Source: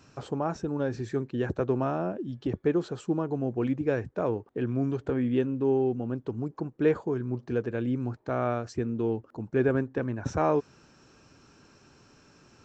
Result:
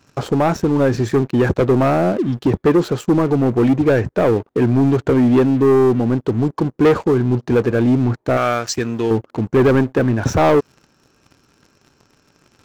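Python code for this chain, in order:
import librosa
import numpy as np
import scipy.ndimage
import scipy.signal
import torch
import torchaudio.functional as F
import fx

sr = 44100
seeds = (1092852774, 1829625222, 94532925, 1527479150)

y = fx.tilt_shelf(x, sr, db=-9.0, hz=1200.0, at=(8.37, 9.11))
y = fx.leveller(y, sr, passes=3)
y = F.gain(torch.from_numpy(y), 5.0).numpy()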